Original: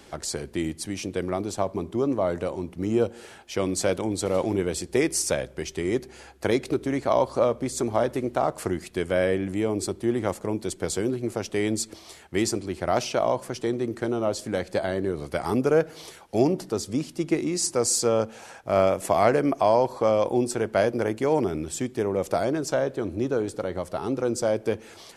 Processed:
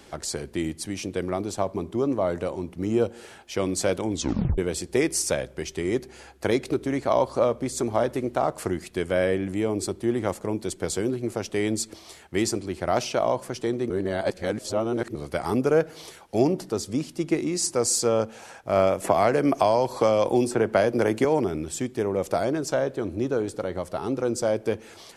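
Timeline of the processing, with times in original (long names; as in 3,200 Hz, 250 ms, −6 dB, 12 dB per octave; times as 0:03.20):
0:04.12: tape stop 0.46 s
0:13.90–0:15.15: reverse
0:19.04–0:21.25: multiband upward and downward compressor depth 100%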